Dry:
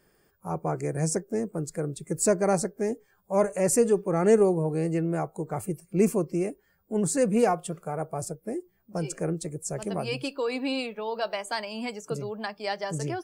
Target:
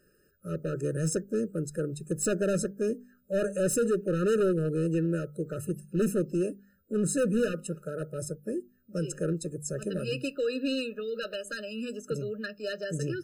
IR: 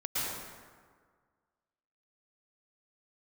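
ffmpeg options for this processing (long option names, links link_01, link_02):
-af "bandreject=frequency=49.6:width_type=h:width=4,bandreject=frequency=99.2:width_type=h:width=4,bandreject=frequency=148.8:width_type=h:width=4,bandreject=frequency=198.4:width_type=h:width=4,bandreject=frequency=248:width_type=h:width=4,asoftclip=type=hard:threshold=-22dB,afftfilt=real='re*eq(mod(floor(b*sr/1024/610),2),0)':imag='im*eq(mod(floor(b*sr/1024/610),2),0)':win_size=1024:overlap=0.75"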